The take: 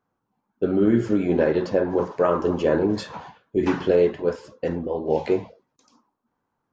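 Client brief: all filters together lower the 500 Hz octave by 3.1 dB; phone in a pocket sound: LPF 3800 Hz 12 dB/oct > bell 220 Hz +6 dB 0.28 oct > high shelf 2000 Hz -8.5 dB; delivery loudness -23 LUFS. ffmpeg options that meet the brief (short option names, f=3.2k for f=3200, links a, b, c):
-af "lowpass=3.8k,equalizer=f=220:t=o:w=0.28:g=6,equalizer=f=500:t=o:g=-3.5,highshelf=f=2k:g=-8.5,volume=1dB"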